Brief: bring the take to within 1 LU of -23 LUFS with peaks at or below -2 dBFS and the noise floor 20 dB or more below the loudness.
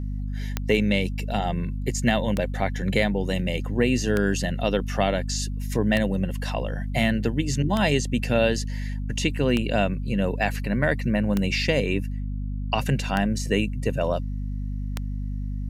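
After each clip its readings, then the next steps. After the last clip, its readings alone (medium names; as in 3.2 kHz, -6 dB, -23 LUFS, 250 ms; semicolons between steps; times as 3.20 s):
clicks found 9; hum 50 Hz; highest harmonic 250 Hz; hum level -26 dBFS; loudness -25.0 LUFS; peak level -7.5 dBFS; loudness target -23.0 LUFS
-> de-click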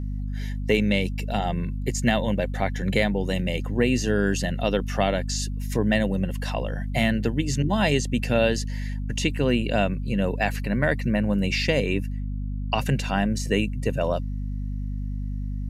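clicks found 0; hum 50 Hz; highest harmonic 250 Hz; hum level -26 dBFS
-> de-hum 50 Hz, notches 5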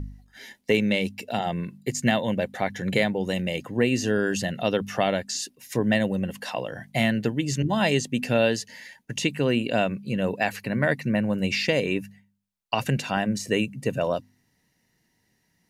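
hum not found; loudness -25.5 LUFS; peak level -8.5 dBFS; loudness target -23.0 LUFS
-> trim +2.5 dB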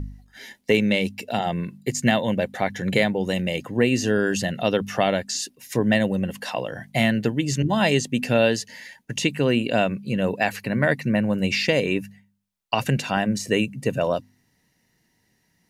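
loudness -23.0 LUFS; peak level -6.0 dBFS; noise floor -68 dBFS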